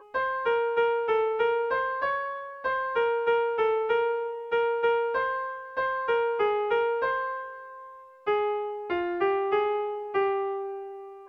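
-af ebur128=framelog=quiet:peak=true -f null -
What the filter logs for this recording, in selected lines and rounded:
Integrated loudness:
  I:         -27.3 LUFS
  Threshold: -37.5 LUFS
Loudness range:
  LRA:         2.3 LU
  Threshold: -47.5 LUFS
  LRA low:   -28.8 LUFS
  LRA high:  -26.6 LUFS
True peak:
  Peak:      -14.7 dBFS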